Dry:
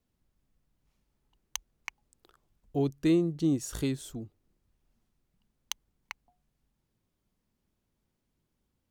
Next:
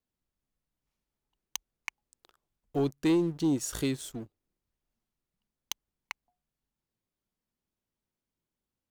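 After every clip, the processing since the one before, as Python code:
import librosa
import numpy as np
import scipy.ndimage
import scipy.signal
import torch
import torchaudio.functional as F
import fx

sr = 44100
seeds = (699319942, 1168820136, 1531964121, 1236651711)

y = fx.low_shelf(x, sr, hz=260.0, db=-7.0)
y = fx.leveller(y, sr, passes=2)
y = y * 10.0 ** (-3.5 / 20.0)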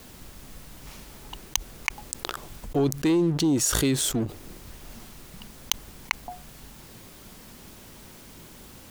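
y = fx.env_flatten(x, sr, amount_pct=70)
y = y * 10.0 ** (2.5 / 20.0)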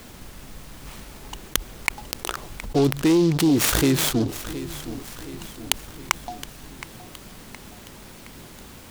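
y = fx.echo_feedback(x, sr, ms=718, feedback_pct=52, wet_db=-14.5)
y = fx.noise_mod_delay(y, sr, seeds[0], noise_hz=4000.0, depth_ms=0.038)
y = y * 10.0 ** (4.0 / 20.0)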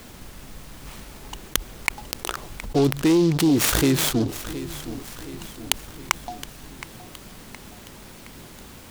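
y = x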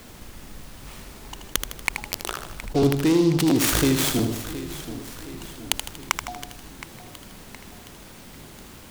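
y = fx.echo_feedback(x, sr, ms=79, feedback_pct=48, wet_db=-7.5)
y = fx.buffer_crackle(y, sr, first_s=0.77, period_s=0.68, block=512, kind='repeat')
y = y * 10.0 ** (-1.5 / 20.0)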